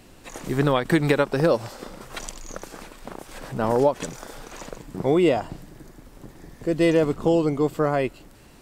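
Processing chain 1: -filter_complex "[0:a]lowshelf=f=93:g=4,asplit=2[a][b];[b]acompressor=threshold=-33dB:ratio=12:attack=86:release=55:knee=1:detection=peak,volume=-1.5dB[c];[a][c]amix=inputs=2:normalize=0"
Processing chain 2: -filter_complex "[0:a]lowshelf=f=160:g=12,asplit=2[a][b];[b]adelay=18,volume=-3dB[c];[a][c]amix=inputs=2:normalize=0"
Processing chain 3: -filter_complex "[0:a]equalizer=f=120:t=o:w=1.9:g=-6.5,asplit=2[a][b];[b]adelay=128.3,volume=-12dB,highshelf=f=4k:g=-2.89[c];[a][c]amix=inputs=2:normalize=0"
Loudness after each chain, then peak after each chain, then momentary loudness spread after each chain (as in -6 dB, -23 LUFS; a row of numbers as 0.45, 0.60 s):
-20.5, -18.0, -23.5 LUFS; -4.0, -2.5, -6.0 dBFS; 17, 20, 19 LU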